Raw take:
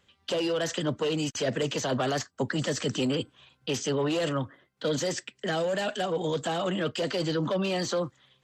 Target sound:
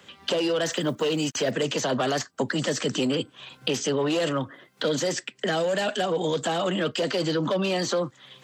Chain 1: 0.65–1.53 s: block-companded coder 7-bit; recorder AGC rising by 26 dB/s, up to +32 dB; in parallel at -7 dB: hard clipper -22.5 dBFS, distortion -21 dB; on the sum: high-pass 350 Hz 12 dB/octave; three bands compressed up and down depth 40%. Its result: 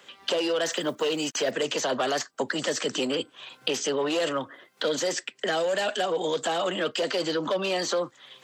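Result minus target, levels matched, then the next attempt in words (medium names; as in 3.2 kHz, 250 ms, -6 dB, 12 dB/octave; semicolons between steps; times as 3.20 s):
125 Hz band -10.0 dB
0.65–1.53 s: block-companded coder 7-bit; recorder AGC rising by 26 dB/s, up to +32 dB; in parallel at -7 dB: hard clipper -22.5 dBFS, distortion -21 dB; on the sum: high-pass 150 Hz 12 dB/octave; three bands compressed up and down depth 40%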